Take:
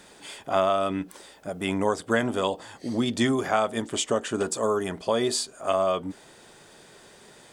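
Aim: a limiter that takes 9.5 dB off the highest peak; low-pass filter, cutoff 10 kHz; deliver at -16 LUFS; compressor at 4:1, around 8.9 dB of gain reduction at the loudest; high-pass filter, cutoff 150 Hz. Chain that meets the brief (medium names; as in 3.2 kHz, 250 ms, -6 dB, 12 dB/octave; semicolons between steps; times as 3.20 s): high-pass 150 Hz; low-pass 10 kHz; compression 4:1, threshold -29 dBFS; trim +20 dB; peak limiter -5 dBFS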